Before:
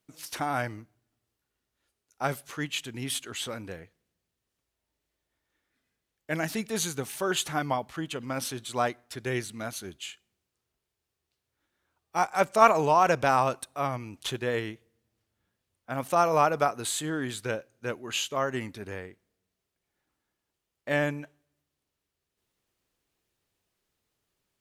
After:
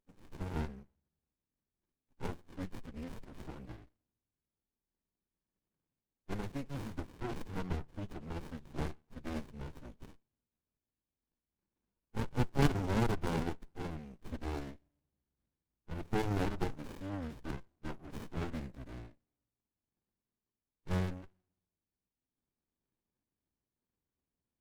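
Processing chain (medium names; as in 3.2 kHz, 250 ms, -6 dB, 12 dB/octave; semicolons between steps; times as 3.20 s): tracing distortion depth 0.41 ms; formant-preserving pitch shift -8 st; sliding maximum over 65 samples; trim -6 dB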